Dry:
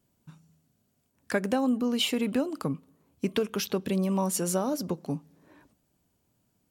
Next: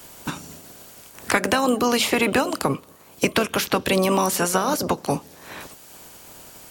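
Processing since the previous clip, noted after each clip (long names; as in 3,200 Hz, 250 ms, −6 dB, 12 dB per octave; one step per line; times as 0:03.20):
ceiling on every frequency bin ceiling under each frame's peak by 19 dB
multiband upward and downward compressor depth 70%
level +7.5 dB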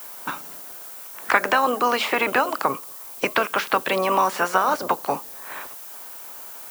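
resonant band-pass 1,200 Hz, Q 1
background noise violet −44 dBFS
level +5 dB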